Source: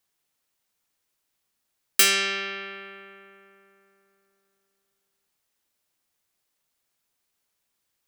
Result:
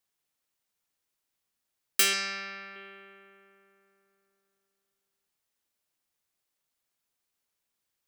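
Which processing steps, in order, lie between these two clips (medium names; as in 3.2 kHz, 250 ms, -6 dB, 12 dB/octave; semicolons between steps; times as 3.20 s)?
2.13–2.76 s: graphic EQ with 31 bands 400 Hz -9 dB, 3.15 kHz -11 dB, 5 kHz +6 dB, 10 kHz -4 dB; trim -5.5 dB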